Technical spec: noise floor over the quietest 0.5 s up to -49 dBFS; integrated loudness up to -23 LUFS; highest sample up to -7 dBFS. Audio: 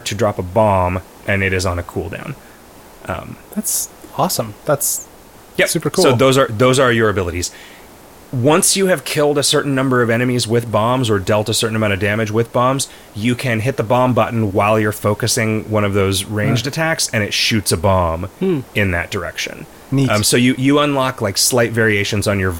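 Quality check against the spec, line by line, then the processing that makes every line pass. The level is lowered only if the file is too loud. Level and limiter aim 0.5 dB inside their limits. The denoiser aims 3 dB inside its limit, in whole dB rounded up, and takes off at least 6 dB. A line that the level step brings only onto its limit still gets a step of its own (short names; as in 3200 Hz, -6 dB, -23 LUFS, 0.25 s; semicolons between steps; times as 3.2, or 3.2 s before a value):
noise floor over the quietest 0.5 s -41 dBFS: fail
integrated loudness -16.0 LUFS: fail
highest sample -2.0 dBFS: fail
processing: denoiser 6 dB, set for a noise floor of -41 dBFS; gain -7.5 dB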